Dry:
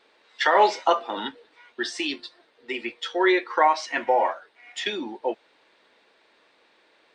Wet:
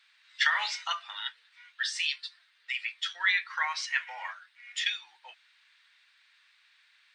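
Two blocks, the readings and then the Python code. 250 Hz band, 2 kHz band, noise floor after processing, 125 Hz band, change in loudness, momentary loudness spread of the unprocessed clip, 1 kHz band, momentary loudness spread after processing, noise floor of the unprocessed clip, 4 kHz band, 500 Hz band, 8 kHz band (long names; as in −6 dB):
below −40 dB, −1.0 dB, −66 dBFS, can't be measured, −6.5 dB, 16 LU, −15.0 dB, 13 LU, −62 dBFS, 0.0 dB, −34.0 dB, 0.0 dB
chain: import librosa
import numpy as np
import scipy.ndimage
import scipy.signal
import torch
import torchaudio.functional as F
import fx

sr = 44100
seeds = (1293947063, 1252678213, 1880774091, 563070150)

y = scipy.signal.sosfilt(scipy.signal.butter(4, 1500.0, 'highpass', fs=sr, output='sos'), x)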